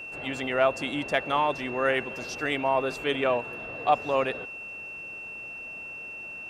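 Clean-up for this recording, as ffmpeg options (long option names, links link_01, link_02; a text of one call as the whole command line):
ffmpeg -i in.wav -af "bandreject=frequency=2700:width=30" out.wav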